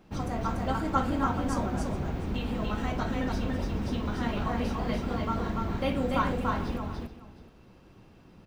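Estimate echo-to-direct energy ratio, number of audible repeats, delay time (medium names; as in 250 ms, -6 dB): -2.5 dB, 3, 289 ms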